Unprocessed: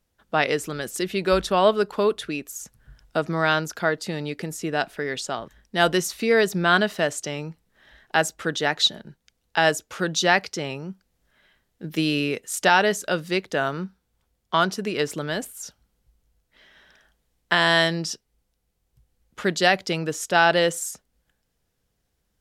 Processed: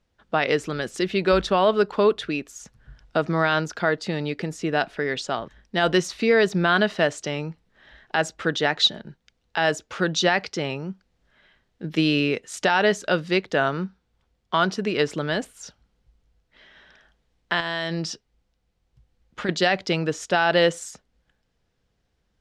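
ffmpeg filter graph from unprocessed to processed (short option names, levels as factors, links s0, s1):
-filter_complex "[0:a]asettb=1/sr,asplit=3[s0][s1][s2];[s0]atrim=end=17.604[s3];[s1]atrim=start=17.6:end=19.49,asetpts=PTS-STARTPTS,afade=t=in:d=0.004:c=qsin,afade=t=out:st=1.886:d=0.004:c=qsin,bandreject=f=420:w=14,acompressor=threshold=0.0631:ratio=12:attack=3.2:release=140:knee=1:detection=peak[s4];[s2]atrim=start=19.486[s5];[s3][s4]acrossfade=d=0.004:c1=hsin:c2=qsin[s6];[s6][s5]acrossfade=d=0.004:c1=qsin:c2=hsin,lowpass=4900,alimiter=limit=0.282:level=0:latency=1:release=65,volume=1.33"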